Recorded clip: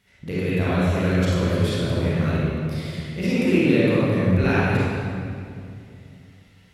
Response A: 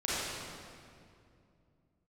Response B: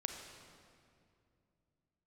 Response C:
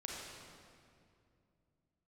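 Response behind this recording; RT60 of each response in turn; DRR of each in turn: A; 2.5 s, 2.5 s, 2.5 s; -10.0 dB, 3.5 dB, -3.5 dB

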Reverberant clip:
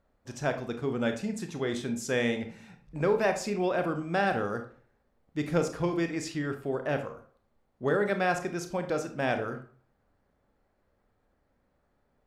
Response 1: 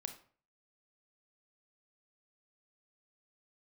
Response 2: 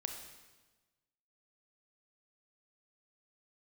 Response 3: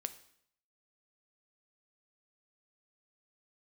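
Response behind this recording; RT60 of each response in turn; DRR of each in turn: 1; 0.45 s, 1.2 s, 0.65 s; 7.0 dB, 4.0 dB, 10.5 dB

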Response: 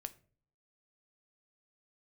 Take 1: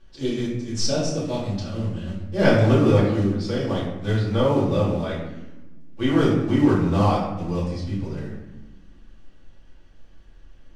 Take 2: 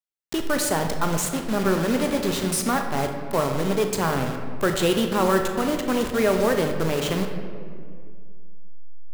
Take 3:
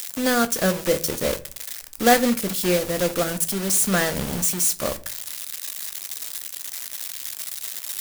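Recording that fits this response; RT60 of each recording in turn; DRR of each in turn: 3; 1.1 s, 2.1 s, 0.45 s; -8.5 dB, 4.5 dB, 10.0 dB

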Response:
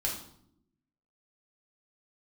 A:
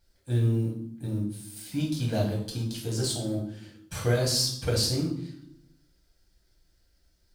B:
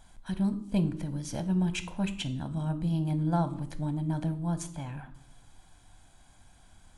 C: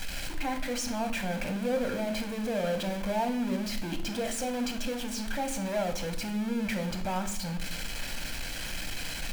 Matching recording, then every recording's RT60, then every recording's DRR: A; 0.70 s, no single decay rate, 0.75 s; -3.0 dB, 10.0 dB, 6.0 dB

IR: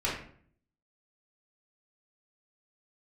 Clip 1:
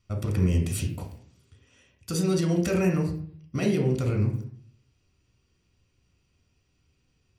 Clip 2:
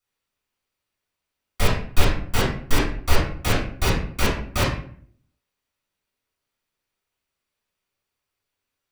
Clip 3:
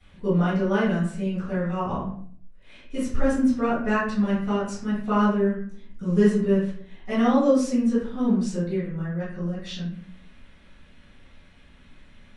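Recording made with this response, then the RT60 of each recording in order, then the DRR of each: 2; 0.55 s, 0.55 s, 0.55 s; 1.0 dB, -7.5 dB, -16.5 dB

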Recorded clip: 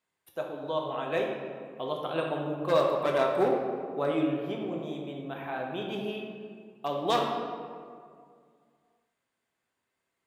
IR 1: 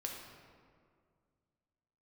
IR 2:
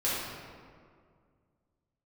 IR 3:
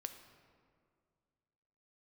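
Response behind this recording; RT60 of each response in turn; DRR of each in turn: 1; 2.1 s, 2.1 s, 2.1 s; -0.5 dB, -10.5 dB, 7.0 dB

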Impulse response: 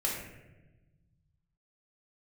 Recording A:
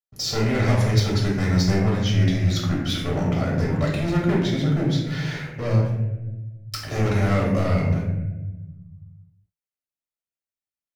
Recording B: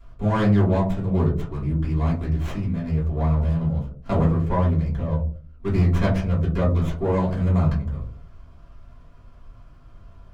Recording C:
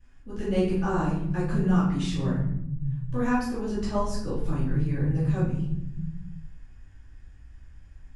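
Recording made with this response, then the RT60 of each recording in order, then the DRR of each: A; 1.1 s, 0.45 s, 0.85 s; -4.0 dB, -7.0 dB, -14.0 dB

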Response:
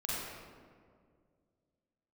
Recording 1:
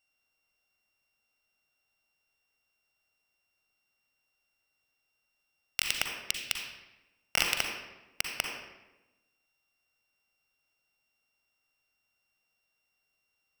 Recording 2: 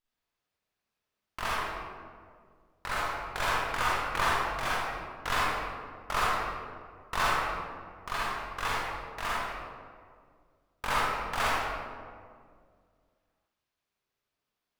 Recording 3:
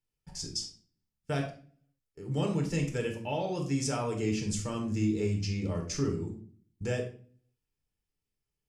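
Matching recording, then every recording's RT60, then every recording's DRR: 2; 1.0 s, 2.1 s, 0.45 s; 2.0 dB, -7.5 dB, 1.5 dB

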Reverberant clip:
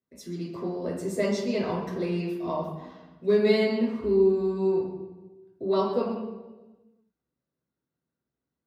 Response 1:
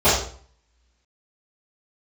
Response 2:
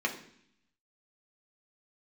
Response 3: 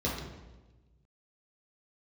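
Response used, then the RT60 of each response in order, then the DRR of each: 3; 0.50 s, 0.65 s, 1.2 s; -17.5 dB, 0.0 dB, -5.0 dB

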